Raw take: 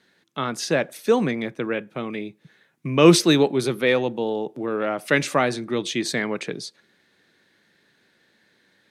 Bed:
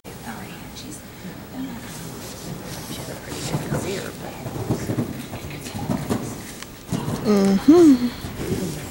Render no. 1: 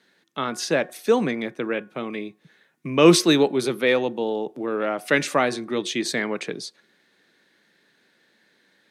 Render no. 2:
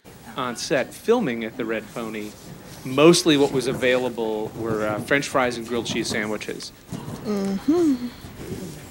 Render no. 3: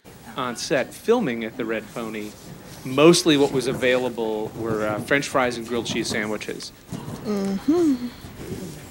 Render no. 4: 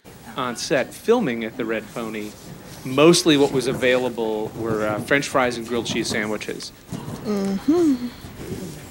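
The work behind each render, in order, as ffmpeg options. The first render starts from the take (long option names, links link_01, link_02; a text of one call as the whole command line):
ffmpeg -i in.wav -af "highpass=170,bandreject=frequency=364.3:width_type=h:width=4,bandreject=frequency=728.6:width_type=h:width=4,bandreject=frequency=1092.9:width_type=h:width=4,bandreject=frequency=1457.2:width_type=h:width=4,bandreject=frequency=1821.5:width_type=h:width=4" out.wav
ffmpeg -i in.wav -i bed.wav -filter_complex "[1:a]volume=-7.5dB[link_01];[0:a][link_01]amix=inputs=2:normalize=0" out.wav
ffmpeg -i in.wav -af anull out.wav
ffmpeg -i in.wav -af "volume=1.5dB,alimiter=limit=-3dB:level=0:latency=1" out.wav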